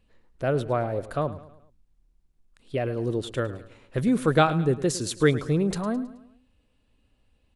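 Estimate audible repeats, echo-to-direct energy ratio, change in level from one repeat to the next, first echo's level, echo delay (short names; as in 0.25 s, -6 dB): 3, -15.0 dB, -6.5 dB, -16.0 dB, 0.107 s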